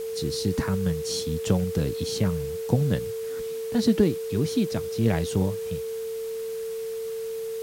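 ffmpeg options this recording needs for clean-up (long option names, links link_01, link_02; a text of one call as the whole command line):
ffmpeg -i in.wav -af "bandreject=frequency=450:width=30,afwtdn=0.005" out.wav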